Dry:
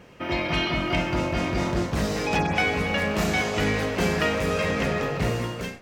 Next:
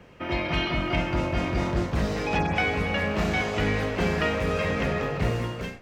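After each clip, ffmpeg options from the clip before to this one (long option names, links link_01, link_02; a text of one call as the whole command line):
ffmpeg -i in.wav -filter_complex "[0:a]bass=frequency=250:gain=-1,treble=frequency=4000:gain=-5,acrossover=split=110|1000|5900[link_01][link_02][link_03][link_04];[link_01]acontrast=34[link_05];[link_04]alimiter=level_in=20dB:limit=-24dB:level=0:latency=1,volume=-20dB[link_06];[link_05][link_02][link_03][link_06]amix=inputs=4:normalize=0,volume=-1.5dB" out.wav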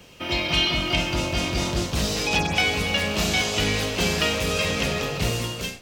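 ffmpeg -i in.wav -af "aexciter=amount=5.3:drive=4.6:freq=2700" out.wav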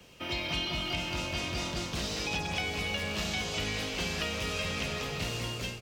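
ffmpeg -i in.wav -filter_complex "[0:a]aecho=1:1:206|412|618|824|1030|1236:0.282|0.147|0.0762|0.0396|0.0206|0.0107,acrossover=split=160|880|6600[link_01][link_02][link_03][link_04];[link_01]acompressor=threshold=-31dB:ratio=4[link_05];[link_02]acompressor=threshold=-32dB:ratio=4[link_06];[link_03]acompressor=threshold=-26dB:ratio=4[link_07];[link_04]acompressor=threshold=-45dB:ratio=4[link_08];[link_05][link_06][link_07][link_08]amix=inputs=4:normalize=0,volume=-6.5dB" out.wav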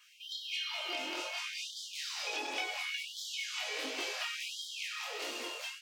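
ffmpeg -i in.wav -af "flanger=delay=20:depth=7.2:speed=1.5,afftfilt=real='re*gte(b*sr/1024,240*pow(3100/240,0.5+0.5*sin(2*PI*0.7*pts/sr)))':imag='im*gte(b*sr/1024,240*pow(3100/240,0.5+0.5*sin(2*PI*0.7*pts/sr)))':win_size=1024:overlap=0.75" out.wav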